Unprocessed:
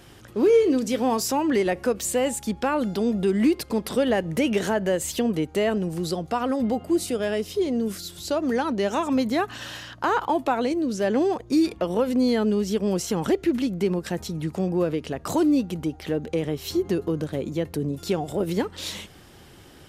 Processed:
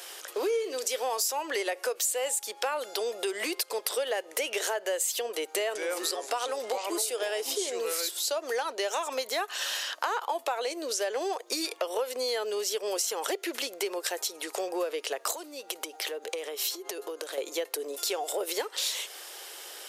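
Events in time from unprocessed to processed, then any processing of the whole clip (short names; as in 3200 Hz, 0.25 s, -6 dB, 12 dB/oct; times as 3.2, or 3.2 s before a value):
5.39–8.09 echoes that change speed 0.163 s, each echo -4 st, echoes 2, each echo -6 dB
15.31–17.38 compressor, threshold -31 dBFS
whole clip: steep high-pass 430 Hz 36 dB/oct; high shelf 3500 Hz +11.5 dB; compressor 4:1, threshold -33 dBFS; gain +4 dB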